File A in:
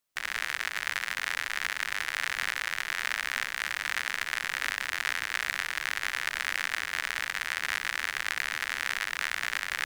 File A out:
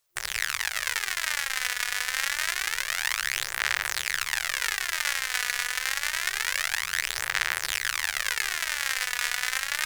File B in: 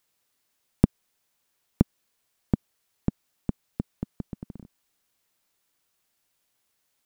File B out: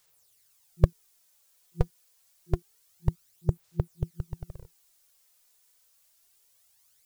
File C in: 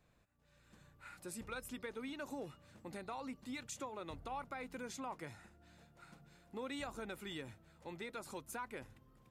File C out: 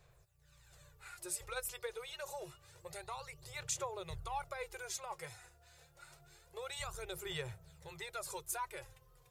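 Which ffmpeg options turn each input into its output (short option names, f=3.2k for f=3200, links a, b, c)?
-af "bass=f=250:g=2,treble=f=4k:g=9,aphaser=in_gain=1:out_gain=1:delay=4.1:decay=0.53:speed=0.27:type=sinusoidal,afftfilt=real='re*(1-between(b*sr/4096,170,350))':imag='im*(1-between(b*sr/4096,170,350))':win_size=4096:overlap=0.75"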